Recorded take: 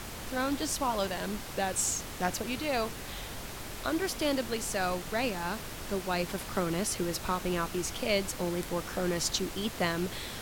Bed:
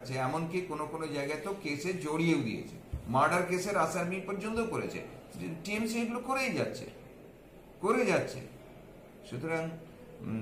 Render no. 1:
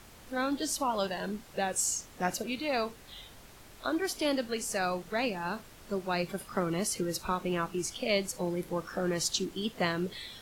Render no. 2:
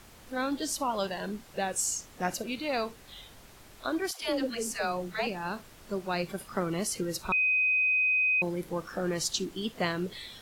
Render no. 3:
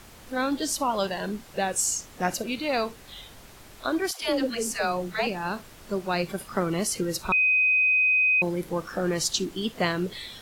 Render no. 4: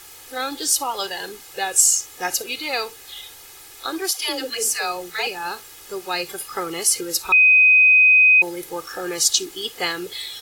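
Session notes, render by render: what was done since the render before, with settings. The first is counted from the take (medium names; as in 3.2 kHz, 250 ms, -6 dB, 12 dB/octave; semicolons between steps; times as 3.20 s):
noise print and reduce 12 dB
4.11–5.27 s: phase dispersion lows, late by 114 ms, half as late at 510 Hz; 7.32–8.42 s: bleep 2.51 kHz -22.5 dBFS
trim +4.5 dB
tilt EQ +3 dB/octave; comb 2.4 ms, depth 73%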